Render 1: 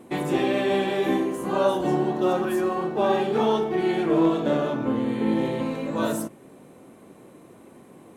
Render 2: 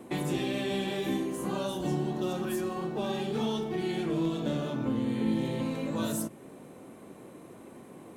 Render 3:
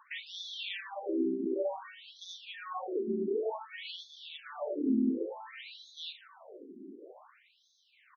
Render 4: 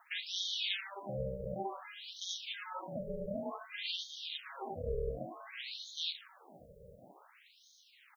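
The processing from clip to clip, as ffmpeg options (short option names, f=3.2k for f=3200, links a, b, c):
-filter_complex "[0:a]acrossover=split=220|3000[a][b][c];[b]acompressor=threshold=-34dB:ratio=6[d];[a][d][c]amix=inputs=3:normalize=0"
-filter_complex "[0:a]asplit=2[a][b];[b]adelay=309,volume=-19dB,highshelf=f=4k:g=-6.95[c];[a][c]amix=inputs=2:normalize=0,afftfilt=real='re*between(b*sr/1024,280*pow(4700/280,0.5+0.5*sin(2*PI*0.55*pts/sr))/1.41,280*pow(4700/280,0.5+0.5*sin(2*PI*0.55*pts/sr))*1.41)':imag='im*between(b*sr/1024,280*pow(4700/280,0.5+0.5*sin(2*PI*0.55*pts/sr))/1.41,280*pow(4700/280,0.5+0.5*sin(2*PI*0.55*pts/sr))*1.41)':win_size=1024:overlap=0.75,volume=3dB"
-af "aeval=exprs='val(0)*sin(2*PI*200*n/s)':c=same,crystalizer=i=8.5:c=0,volume=-5.5dB"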